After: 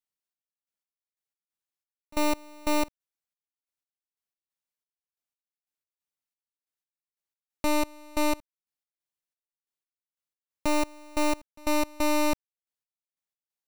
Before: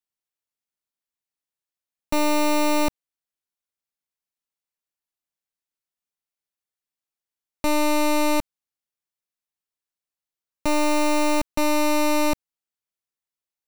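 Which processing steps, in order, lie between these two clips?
step gate "xx..x..x." 90 bpm -24 dB; gain -3.5 dB

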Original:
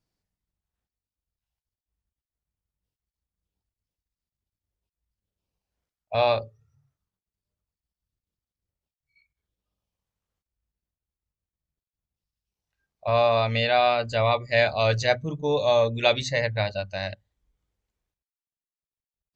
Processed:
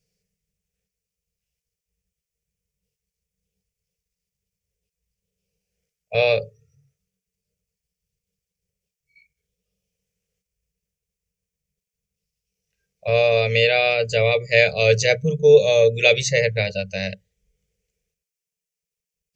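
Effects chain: EQ curve 110 Hz 0 dB, 190 Hz +10 dB, 270 Hz -25 dB, 450 Hz +13 dB, 640 Hz -3 dB, 990 Hz -16 dB, 2400 Hz +8 dB, 3900 Hz 0 dB, 5800 Hz +10 dB, 11000 Hz +5 dB; gain +2.5 dB

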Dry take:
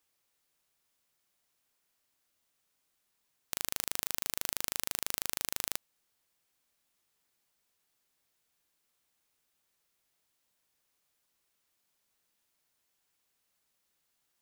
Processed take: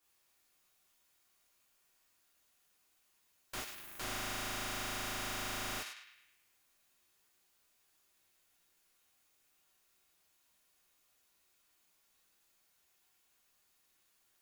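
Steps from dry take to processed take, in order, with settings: 3.57–3.97 tube stage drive 26 dB, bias 0.7; on a send: narrowing echo 0.106 s, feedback 53%, band-pass 2200 Hz, level -7 dB; on the sum: non-linear reverb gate 80 ms flat, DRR -7 dB; slew limiter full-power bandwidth 79 Hz; gain -3.5 dB

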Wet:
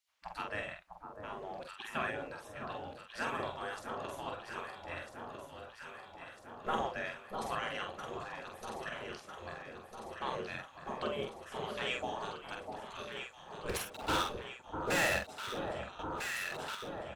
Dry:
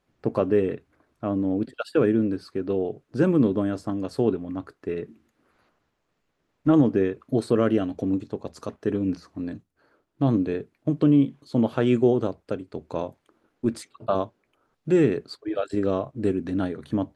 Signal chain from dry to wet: ending faded out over 3.33 s; spectral gate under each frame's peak -20 dB weak; 13.69–15.24 sample leveller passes 5; doubler 46 ms -4 dB; echo with dull and thin repeats by turns 0.65 s, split 1200 Hz, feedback 80%, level -5.5 dB; 15.99–16.75 fast leveller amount 70%

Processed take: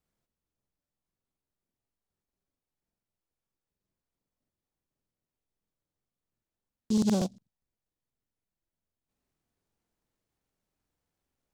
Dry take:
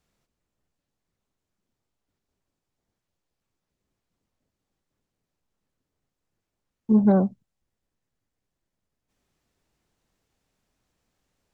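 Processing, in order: crackling interface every 0.12 s, samples 2048, repeat, from 0.33; noise-modulated delay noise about 5000 Hz, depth 0.078 ms; gain -8.5 dB

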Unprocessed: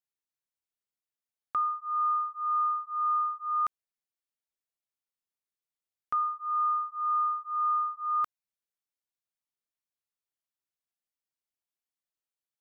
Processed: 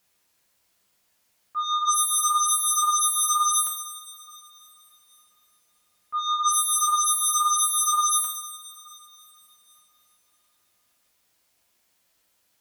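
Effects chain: auto swell 0.401 s; sine folder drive 18 dB, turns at -23 dBFS; two-slope reverb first 0.51 s, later 3.5 s, from -16 dB, DRR 0 dB

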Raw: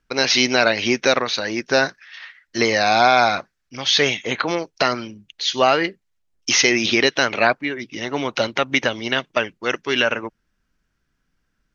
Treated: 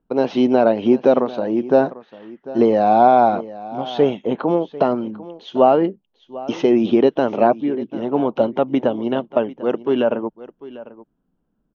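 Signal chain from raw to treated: EQ curve 110 Hz 0 dB, 190 Hz +11 dB, 400 Hz +9 dB, 890 Hz +6 dB, 2100 Hz -19 dB, 3100 Hz -9 dB, 4700 Hz -25 dB; on a send: echo 0.746 s -17.5 dB; on the sum: gain -3 dB

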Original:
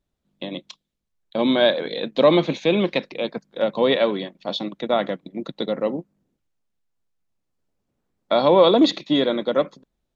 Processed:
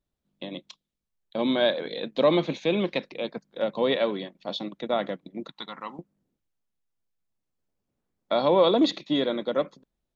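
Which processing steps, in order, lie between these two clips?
5.48–5.99 resonant low shelf 730 Hz -10.5 dB, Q 3; gain -5.5 dB

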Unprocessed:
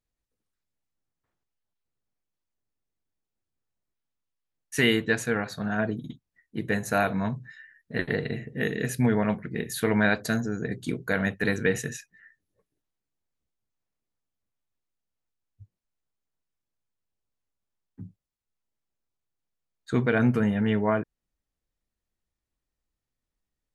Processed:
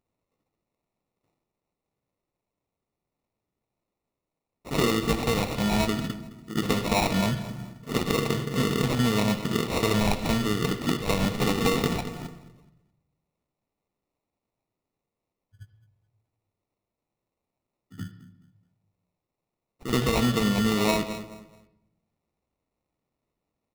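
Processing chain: harmoniser -12 st -12 dB; spectral gain 11.72–12.27, 230–3700 Hz +11 dB; in parallel at +0.5 dB: limiter -17 dBFS, peak gain reduction 9 dB; on the sum: HPF 100 Hz; pre-echo 74 ms -13 dB; sample-rate reducer 1600 Hz, jitter 0%; feedback echo 0.213 s, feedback 29%, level -18 dB; compressor 4:1, threshold -21 dBFS, peak gain reduction 7.5 dB; on a send at -13 dB: steep low-pass 5500 Hz 96 dB/oct + reverb RT60 0.75 s, pre-delay 67 ms; on the sum: dynamic EQ 3500 Hz, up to +5 dB, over -46 dBFS, Q 1.1

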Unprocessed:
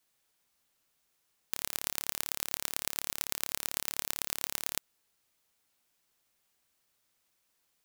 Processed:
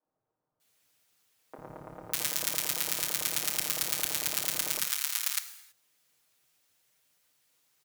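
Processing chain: HPF 69 Hz 6 dB/oct; comb 6.5 ms, depth 98%; three bands offset in time mids, lows, highs 50/600 ms, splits 280/1100 Hz; harmoniser -4 st -6 dB, -3 st -6 dB; non-linear reverb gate 0.35 s falling, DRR 10 dB

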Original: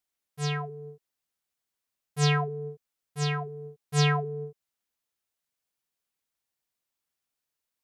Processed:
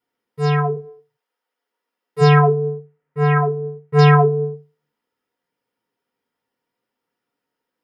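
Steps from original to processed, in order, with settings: 0.75–2.2 HPF 810 Hz -> 270 Hz 12 dB/oct; 2.71–3.99 resonant high shelf 3000 Hz -13 dB, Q 1.5; reverb RT60 0.25 s, pre-delay 3 ms, DRR -4.5 dB; gain -4.5 dB

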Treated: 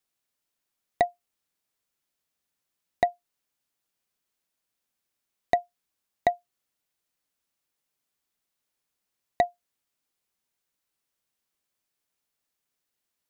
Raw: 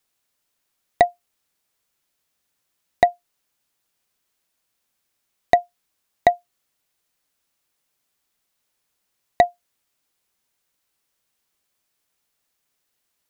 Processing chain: bell 240 Hz +2 dB 1.5 oct; gain -8 dB

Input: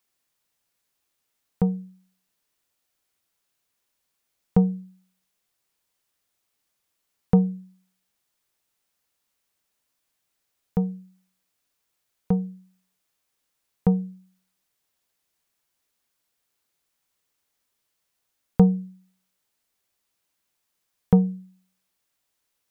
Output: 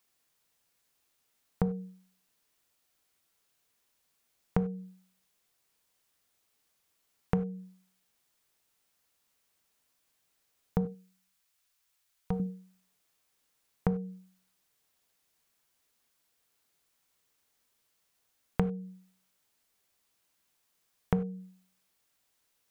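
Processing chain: 10.85–12.4 bell 270 Hz -14.5 dB 2.4 oct; compressor 12:1, threshold -27 dBFS, peak gain reduction 17 dB; reverb, pre-delay 3 ms, DRR 13 dB; gain +1.5 dB

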